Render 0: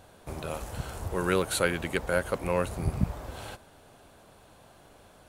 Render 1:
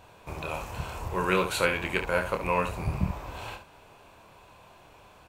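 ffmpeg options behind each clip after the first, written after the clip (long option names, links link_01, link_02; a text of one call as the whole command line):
ffmpeg -i in.wav -filter_complex "[0:a]equalizer=frequency=250:width_type=o:width=0.33:gain=-4,equalizer=frequency=1000:width_type=o:width=0.33:gain=9,equalizer=frequency=2500:width_type=o:width=0.33:gain=10,equalizer=frequency=10000:width_type=o:width=0.33:gain=-9,asplit=2[link_01][link_02];[link_02]aecho=0:1:27|71:0.501|0.335[link_03];[link_01][link_03]amix=inputs=2:normalize=0,volume=-1.5dB" out.wav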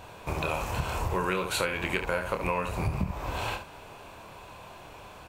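ffmpeg -i in.wav -af "acompressor=threshold=-32dB:ratio=10,volume=7dB" out.wav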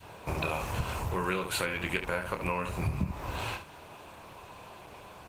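ffmpeg -i in.wav -af "adynamicequalizer=threshold=0.00794:dfrequency=630:dqfactor=0.8:tfrequency=630:tqfactor=0.8:attack=5:release=100:ratio=0.375:range=2:mode=cutabove:tftype=bell,highpass=52" -ar 48000 -c:a libopus -b:a 20k out.opus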